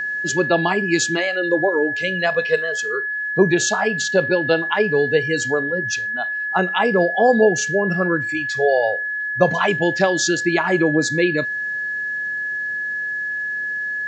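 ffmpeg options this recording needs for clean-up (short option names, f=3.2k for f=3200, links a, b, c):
-af "bandreject=f=1.7k:w=30"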